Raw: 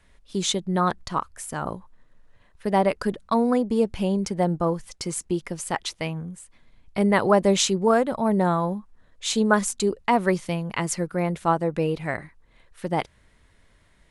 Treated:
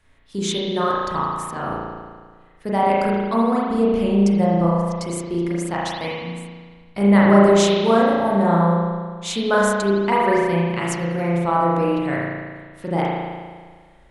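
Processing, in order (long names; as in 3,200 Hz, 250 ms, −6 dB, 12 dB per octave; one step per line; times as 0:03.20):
spring reverb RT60 1.6 s, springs 35 ms, chirp 50 ms, DRR −6 dB
level −2.5 dB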